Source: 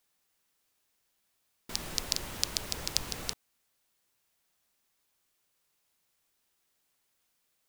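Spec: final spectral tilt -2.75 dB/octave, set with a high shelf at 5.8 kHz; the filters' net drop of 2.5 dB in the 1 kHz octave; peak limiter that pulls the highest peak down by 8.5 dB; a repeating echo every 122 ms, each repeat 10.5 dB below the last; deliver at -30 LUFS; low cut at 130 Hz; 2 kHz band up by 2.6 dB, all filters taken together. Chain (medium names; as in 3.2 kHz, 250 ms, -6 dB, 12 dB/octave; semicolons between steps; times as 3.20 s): high-pass 130 Hz; peaking EQ 1 kHz -4.5 dB; peaking EQ 2 kHz +5.5 dB; treble shelf 5.8 kHz -8 dB; peak limiter -13.5 dBFS; feedback delay 122 ms, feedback 30%, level -10.5 dB; trim +10 dB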